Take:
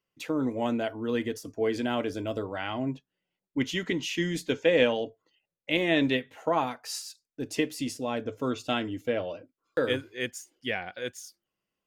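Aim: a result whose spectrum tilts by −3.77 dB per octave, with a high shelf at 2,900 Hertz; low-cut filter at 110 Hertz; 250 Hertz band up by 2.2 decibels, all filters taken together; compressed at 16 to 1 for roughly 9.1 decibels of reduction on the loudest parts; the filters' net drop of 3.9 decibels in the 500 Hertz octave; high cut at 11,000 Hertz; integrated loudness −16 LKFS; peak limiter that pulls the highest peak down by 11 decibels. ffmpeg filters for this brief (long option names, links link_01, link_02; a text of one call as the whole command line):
ffmpeg -i in.wav -af "highpass=110,lowpass=11000,equalizer=frequency=250:width_type=o:gain=4.5,equalizer=frequency=500:width_type=o:gain=-6,highshelf=frequency=2900:gain=3.5,acompressor=threshold=-28dB:ratio=16,volume=21dB,alimiter=limit=-5dB:level=0:latency=1" out.wav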